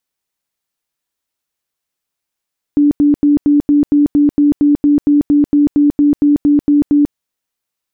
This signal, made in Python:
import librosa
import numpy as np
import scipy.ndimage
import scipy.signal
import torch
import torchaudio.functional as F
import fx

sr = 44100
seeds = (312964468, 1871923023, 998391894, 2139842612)

y = fx.tone_burst(sr, hz=291.0, cycles=41, every_s=0.23, bursts=19, level_db=-6.5)